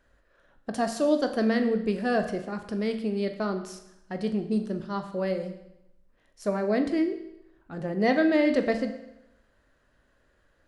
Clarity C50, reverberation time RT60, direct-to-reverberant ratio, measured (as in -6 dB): 10.0 dB, 0.85 s, 6.5 dB